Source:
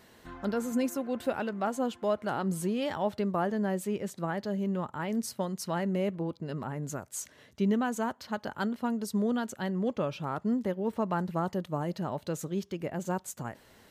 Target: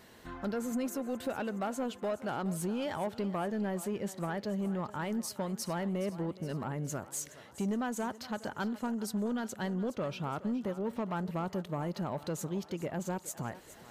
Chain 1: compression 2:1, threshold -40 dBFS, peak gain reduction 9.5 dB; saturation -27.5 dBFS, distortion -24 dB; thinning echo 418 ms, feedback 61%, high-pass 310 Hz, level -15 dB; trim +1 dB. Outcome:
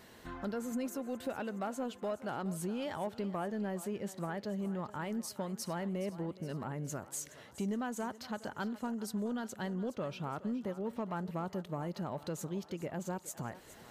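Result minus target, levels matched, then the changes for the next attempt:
compression: peak gain reduction +4 dB
change: compression 2:1, threshold -32 dBFS, peak gain reduction 5.5 dB

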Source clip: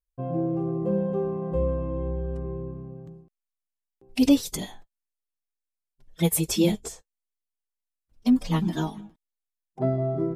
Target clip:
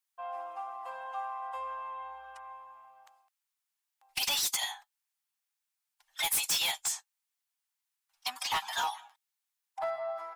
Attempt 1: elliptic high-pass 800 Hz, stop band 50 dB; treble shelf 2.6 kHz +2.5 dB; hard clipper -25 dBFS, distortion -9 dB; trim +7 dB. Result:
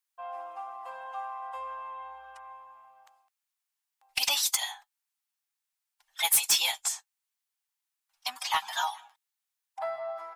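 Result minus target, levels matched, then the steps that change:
hard clipper: distortion -6 dB
change: hard clipper -33.5 dBFS, distortion -4 dB

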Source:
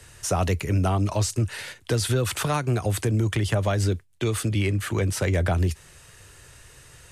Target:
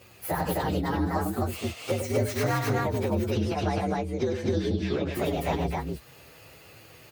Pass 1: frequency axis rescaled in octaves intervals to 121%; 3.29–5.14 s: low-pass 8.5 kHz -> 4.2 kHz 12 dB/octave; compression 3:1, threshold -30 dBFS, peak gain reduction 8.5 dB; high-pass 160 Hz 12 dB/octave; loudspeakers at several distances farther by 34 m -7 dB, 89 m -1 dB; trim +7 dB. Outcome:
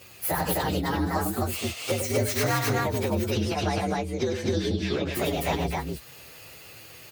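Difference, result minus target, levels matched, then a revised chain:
4 kHz band +4.5 dB
frequency axis rescaled in octaves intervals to 121%; 3.29–5.14 s: low-pass 8.5 kHz -> 4.2 kHz 12 dB/octave; compression 3:1, threshold -30 dBFS, peak gain reduction 8.5 dB; high-pass 160 Hz 12 dB/octave; treble shelf 2.1 kHz -8 dB; loudspeakers at several distances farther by 34 m -7 dB, 89 m -1 dB; trim +7 dB

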